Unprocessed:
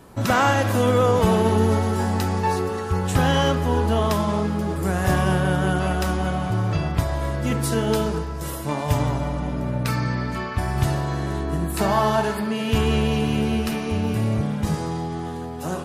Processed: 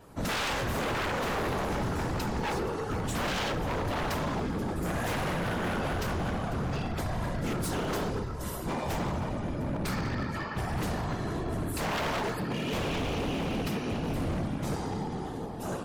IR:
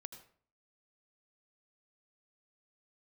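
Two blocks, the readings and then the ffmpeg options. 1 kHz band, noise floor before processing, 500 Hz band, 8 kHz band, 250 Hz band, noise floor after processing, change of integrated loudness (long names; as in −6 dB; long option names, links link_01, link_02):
−9.0 dB, −30 dBFS, −10.0 dB, −7.5 dB, −9.5 dB, −36 dBFS, −9.5 dB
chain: -af "afftfilt=real='hypot(re,im)*cos(2*PI*random(0))':imag='hypot(re,im)*sin(2*PI*random(1))':win_size=512:overlap=0.75,aeval=exprs='0.0531*(abs(mod(val(0)/0.0531+3,4)-2)-1)':channel_layout=same,adynamicequalizer=threshold=0.00141:dfrequency=10000:dqfactor=1.6:tfrequency=10000:tqfactor=1.6:attack=5:release=100:ratio=0.375:range=2.5:mode=cutabove:tftype=bell"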